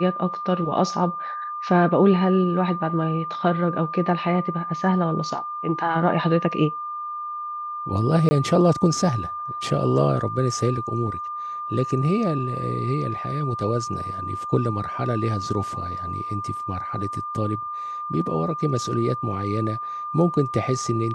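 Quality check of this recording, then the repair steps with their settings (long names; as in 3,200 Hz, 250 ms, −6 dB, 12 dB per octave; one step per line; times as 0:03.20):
whistle 1,200 Hz −28 dBFS
0:08.29–0:08.31: drop-out 20 ms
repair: notch filter 1,200 Hz, Q 30
repair the gap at 0:08.29, 20 ms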